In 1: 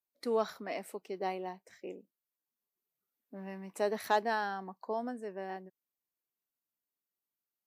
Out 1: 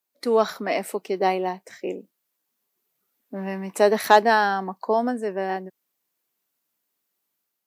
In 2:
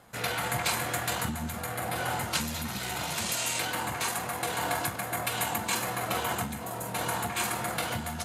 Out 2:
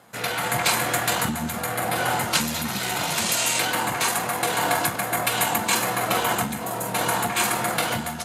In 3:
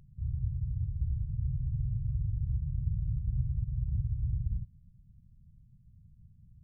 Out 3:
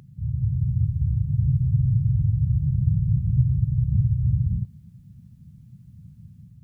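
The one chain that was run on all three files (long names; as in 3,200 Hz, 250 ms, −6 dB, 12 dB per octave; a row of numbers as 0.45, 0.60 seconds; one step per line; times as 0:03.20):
high-pass filter 130 Hz 12 dB per octave
automatic gain control gain up to 4 dB
loudness normalisation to −23 LKFS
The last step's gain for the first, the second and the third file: +10.0, +4.0, +14.0 decibels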